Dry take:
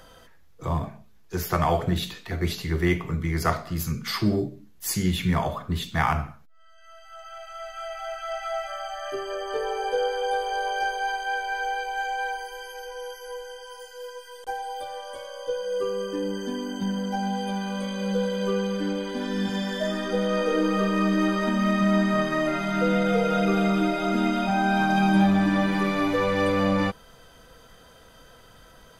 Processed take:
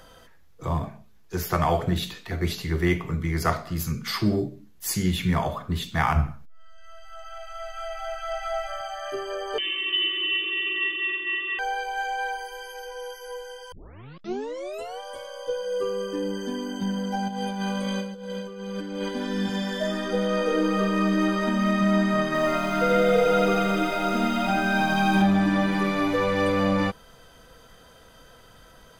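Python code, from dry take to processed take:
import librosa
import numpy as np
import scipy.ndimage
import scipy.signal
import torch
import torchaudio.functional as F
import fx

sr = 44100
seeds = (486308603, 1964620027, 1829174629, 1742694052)

y = fx.low_shelf(x, sr, hz=200.0, db=10.5, at=(6.16, 8.81))
y = fx.freq_invert(y, sr, carrier_hz=3500, at=(9.58, 11.59))
y = fx.over_compress(y, sr, threshold_db=-30.0, ratio=-0.5, at=(17.28, 19.09))
y = fx.echo_crushed(y, sr, ms=85, feedback_pct=55, bits=8, wet_db=-3, at=(22.26, 25.22))
y = fx.edit(y, sr, fx.tape_start(start_s=13.72, length_s=1.28), tone=tone)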